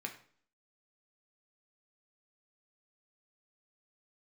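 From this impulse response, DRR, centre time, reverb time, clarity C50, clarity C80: 2.5 dB, 14 ms, 0.50 s, 10.5 dB, 14.0 dB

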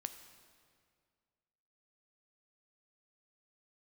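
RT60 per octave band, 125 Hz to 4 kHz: 2.2 s, 2.2 s, 2.1 s, 2.0 s, 1.8 s, 1.6 s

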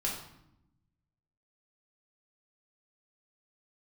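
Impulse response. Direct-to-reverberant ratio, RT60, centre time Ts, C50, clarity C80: -4.5 dB, 0.80 s, 37 ms, 4.5 dB, 8.0 dB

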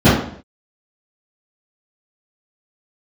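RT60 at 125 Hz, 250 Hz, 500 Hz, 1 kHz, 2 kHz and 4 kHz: 0.65 s, 0.55 s, 0.60 s, 0.55 s, 0.55 s, 0.50 s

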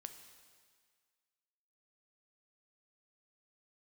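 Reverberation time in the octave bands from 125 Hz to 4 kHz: 1.6 s, 1.6 s, 1.7 s, 1.8 s, 1.8 s, 1.8 s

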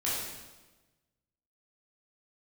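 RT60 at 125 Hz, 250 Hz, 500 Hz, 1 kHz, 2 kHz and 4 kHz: 1.5 s, 1.3 s, 1.3 s, 1.1 s, 1.1 s, 1.0 s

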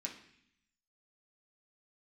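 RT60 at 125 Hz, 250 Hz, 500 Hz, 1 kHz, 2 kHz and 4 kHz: 1.0 s, 1.0 s, 0.65 s, 0.65 s, 0.90 s, 0.90 s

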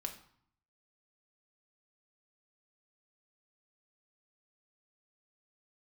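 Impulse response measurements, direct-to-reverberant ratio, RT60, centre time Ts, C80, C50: 3.5 dB, 0.60 s, 12 ms, 14.0 dB, 11.0 dB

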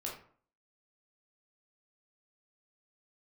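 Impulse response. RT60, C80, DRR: 0.50 s, 10.0 dB, -3.0 dB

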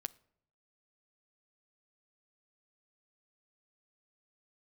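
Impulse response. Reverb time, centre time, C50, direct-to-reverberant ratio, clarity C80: 0.70 s, 2 ms, 22.5 dB, 15.5 dB, 26.0 dB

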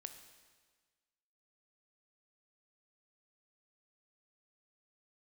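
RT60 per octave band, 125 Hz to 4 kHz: 1.5 s, 1.5 s, 1.5 s, 1.5 s, 1.5 s, 1.4 s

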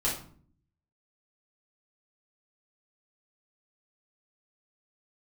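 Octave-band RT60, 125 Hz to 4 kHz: 0.90 s, 0.85 s, 0.55 s, 0.50 s, 0.40 s, 0.35 s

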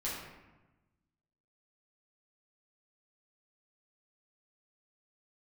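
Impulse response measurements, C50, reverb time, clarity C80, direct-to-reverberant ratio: 1.0 dB, 1.1 s, 3.5 dB, -8.5 dB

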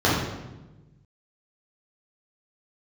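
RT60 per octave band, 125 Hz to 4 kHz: 1.8 s, 1.5 s, 1.2 s, 1.0 s, 0.90 s, 0.80 s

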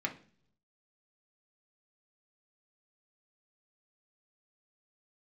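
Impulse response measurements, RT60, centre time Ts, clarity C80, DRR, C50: 0.45 s, 10 ms, 19.0 dB, 0.5 dB, 13.5 dB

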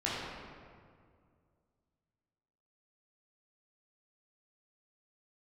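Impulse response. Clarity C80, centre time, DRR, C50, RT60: 0.0 dB, 127 ms, -8.5 dB, -2.0 dB, 2.1 s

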